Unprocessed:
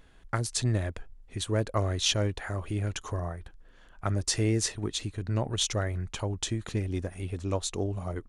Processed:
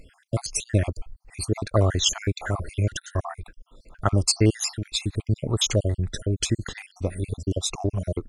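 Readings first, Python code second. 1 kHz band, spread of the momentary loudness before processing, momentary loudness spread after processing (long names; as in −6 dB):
+3.5 dB, 10 LU, 11 LU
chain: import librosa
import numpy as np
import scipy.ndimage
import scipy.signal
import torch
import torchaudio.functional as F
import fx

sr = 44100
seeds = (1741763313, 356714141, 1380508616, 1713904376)

y = fx.spec_dropout(x, sr, seeds[0], share_pct=59)
y = y * 10.0 ** (9.0 / 20.0)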